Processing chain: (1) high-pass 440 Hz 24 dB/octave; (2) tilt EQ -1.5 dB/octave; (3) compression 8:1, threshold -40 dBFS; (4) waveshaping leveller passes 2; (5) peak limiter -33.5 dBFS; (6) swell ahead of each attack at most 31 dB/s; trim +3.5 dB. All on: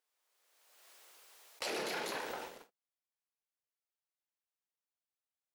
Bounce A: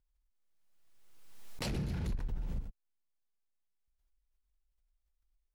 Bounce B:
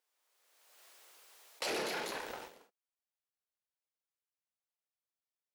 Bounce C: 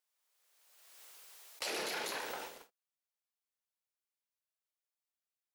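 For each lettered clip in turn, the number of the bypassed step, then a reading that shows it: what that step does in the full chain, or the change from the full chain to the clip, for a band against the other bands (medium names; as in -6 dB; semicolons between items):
1, 125 Hz band +31.0 dB; 3, mean gain reduction 4.5 dB; 2, 8 kHz band +4.5 dB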